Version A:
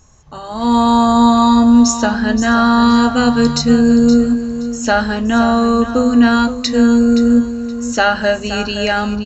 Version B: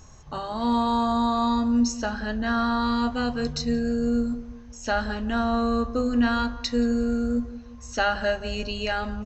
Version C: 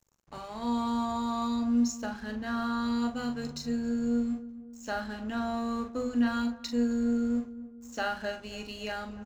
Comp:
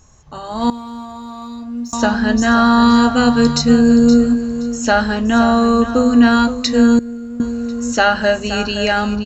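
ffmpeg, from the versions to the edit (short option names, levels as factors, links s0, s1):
-filter_complex "[2:a]asplit=2[s0][s1];[0:a]asplit=3[s2][s3][s4];[s2]atrim=end=0.702[s5];[s0]atrim=start=0.698:end=1.932[s6];[s3]atrim=start=1.928:end=6.992[s7];[s1]atrim=start=6.988:end=7.402[s8];[s4]atrim=start=7.398[s9];[s5][s6]acrossfade=d=0.004:c1=hsin:c2=hsin[s10];[s10][s7]acrossfade=d=0.004:c1=hsin:c2=hsin[s11];[s11][s8]acrossfade=d=0.004:c1=hsin:c2=hsin[s12];[s12][s9]acrossfade=d=0.004:c1=hsin:c2=hsin"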